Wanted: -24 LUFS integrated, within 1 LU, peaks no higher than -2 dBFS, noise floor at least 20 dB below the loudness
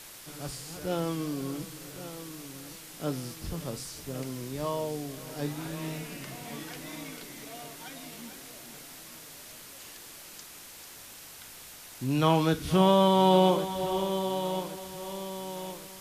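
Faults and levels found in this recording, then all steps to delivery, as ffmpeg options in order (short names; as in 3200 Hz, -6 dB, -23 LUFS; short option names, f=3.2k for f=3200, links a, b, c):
noise floor -48 dBFS; noise floor target -50 dBFS; loudness -30.0 LUFS; peak -10.0 dBFS; loudness target -24.0 LUFS
-> -af "afftdn=nr=6:nf=-48"
-af "volume=6dB"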